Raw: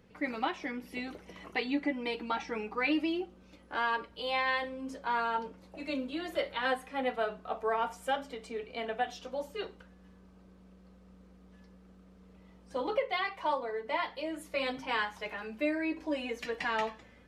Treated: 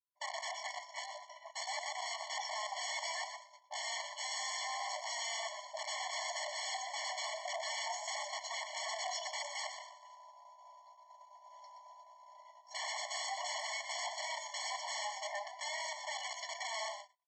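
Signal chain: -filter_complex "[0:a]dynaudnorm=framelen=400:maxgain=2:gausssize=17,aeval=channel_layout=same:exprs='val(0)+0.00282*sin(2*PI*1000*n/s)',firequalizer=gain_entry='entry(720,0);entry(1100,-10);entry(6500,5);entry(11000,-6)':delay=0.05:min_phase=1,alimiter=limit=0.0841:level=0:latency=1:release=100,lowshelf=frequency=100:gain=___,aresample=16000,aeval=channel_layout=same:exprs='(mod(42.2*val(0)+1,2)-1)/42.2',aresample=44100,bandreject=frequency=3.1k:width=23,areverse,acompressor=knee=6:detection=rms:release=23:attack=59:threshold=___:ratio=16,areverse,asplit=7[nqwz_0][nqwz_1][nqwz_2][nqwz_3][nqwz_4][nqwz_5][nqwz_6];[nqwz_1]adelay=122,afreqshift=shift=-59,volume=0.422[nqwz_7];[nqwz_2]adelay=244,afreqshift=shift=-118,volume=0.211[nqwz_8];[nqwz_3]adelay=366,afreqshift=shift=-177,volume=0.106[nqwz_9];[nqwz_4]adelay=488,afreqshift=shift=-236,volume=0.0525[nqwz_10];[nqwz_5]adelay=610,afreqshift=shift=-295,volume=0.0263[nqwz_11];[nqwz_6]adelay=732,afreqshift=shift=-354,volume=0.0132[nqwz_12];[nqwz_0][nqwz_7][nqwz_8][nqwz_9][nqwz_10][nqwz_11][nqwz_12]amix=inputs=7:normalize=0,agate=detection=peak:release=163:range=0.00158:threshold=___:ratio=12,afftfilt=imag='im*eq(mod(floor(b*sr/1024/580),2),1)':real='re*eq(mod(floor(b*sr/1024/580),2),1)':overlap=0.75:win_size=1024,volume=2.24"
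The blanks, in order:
3, 0.00501, 0.00398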